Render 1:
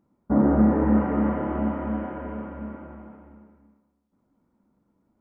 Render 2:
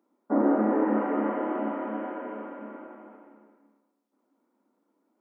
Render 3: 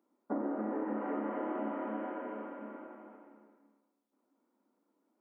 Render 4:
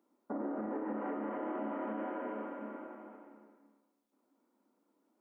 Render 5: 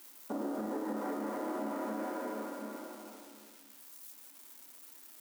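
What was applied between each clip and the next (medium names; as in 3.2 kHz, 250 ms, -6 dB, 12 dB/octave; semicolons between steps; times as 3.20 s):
steep high-pass 260 Hz 36 dB/octave
compression 12:1, threshold -27 dBFS, peak gain reduction 9.5 dB; trim -4.5 dB
peak limiter -31.5 dBFS, peak gain reduction 8.5 dB; trim +1.5 dB
zero-crossing glitches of -42.5 dBFS; trim +1 dB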